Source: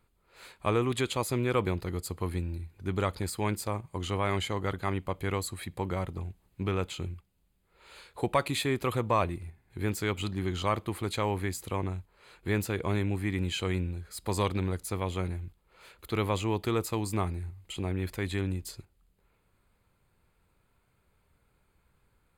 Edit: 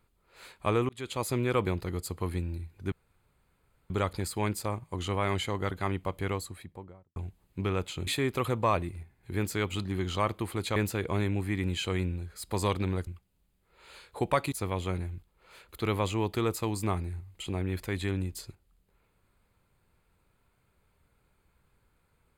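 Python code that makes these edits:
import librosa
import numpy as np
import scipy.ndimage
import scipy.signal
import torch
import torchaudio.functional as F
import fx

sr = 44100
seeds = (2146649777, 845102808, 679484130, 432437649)

y = fx.studio_fade_out(x, sr, start_s=5.16, length_s=1.02)
y = fx.edit(y, sr, fx.fade_in_span(start_s=0.89, length_s=0.38),
    fx.insert_room_tone(at_s=2.92, length_s=0.98),
    fx.move(start_s=7.09, length_s=1.45, to_s=14.82),
    fx.cut(start_s=11.23, length_s=1.28), tone=tone)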